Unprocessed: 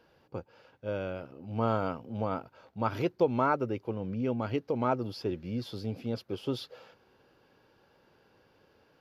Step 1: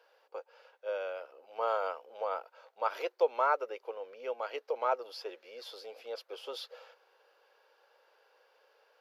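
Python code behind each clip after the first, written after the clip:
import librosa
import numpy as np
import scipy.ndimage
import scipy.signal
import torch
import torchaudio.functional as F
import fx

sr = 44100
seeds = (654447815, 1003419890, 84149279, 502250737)

y = scipy.signal.sosfilt(scipy.signal.ellip(4, 1.0, 80, 480.0, 'highpass', fs=sr, output='sos'), x)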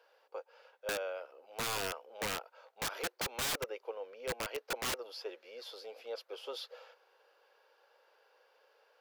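y = (np.mod(10.0 ** (28.5 / 20.0) * x + 1.0, 2.0) - 1.0) / 10.0 ** (28.5 / 20.0)
y = y * 10.0 ** (-1.0 / 20.0)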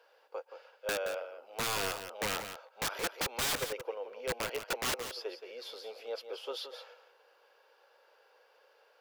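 y = x + 10.0 ** (-9.5 / 20.0) * np.pad(x, (int(173 * sr / 1000.0), 0))[:len(x)]
y = y * 10.0 ** (2.5 / 20.0)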